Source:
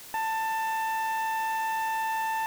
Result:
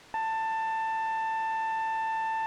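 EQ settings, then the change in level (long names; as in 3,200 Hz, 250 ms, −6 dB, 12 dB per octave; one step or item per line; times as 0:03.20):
low-pass filter 2,200 Hz 6 dB per octave
high-frequency loss of the air 50 metres
0.0 dB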